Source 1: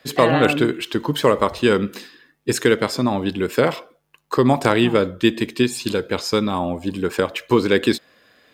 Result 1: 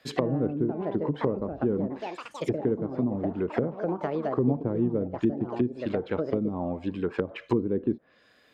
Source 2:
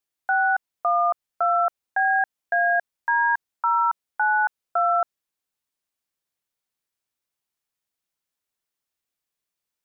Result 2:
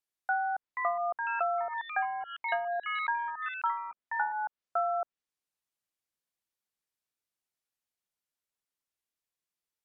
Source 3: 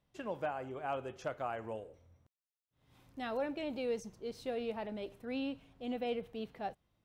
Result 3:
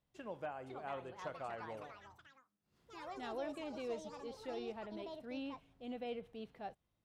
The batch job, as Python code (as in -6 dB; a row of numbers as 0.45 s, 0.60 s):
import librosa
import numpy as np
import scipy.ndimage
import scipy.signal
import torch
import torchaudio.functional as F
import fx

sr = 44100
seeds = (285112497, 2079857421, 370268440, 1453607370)

y = fx.echo_pitch(x, sr, ms=553, semitones=5, count=3, db_per_echo=-6.0)
y = fx.env_lowpass_down(y, sr, base_hz=360.0, full_db=-14.5)
y = y * 10.0 ** (-6.5 / 20.0)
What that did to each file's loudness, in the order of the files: -9.5 LU, -10.0 LU, -6.0 LU